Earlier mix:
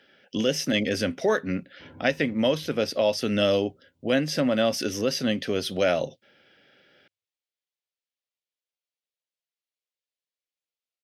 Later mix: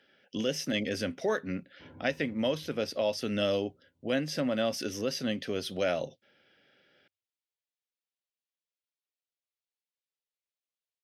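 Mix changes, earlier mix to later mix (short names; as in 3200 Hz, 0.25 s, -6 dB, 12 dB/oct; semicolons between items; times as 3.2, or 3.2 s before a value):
speech -6.5 dB; background -3.5 dB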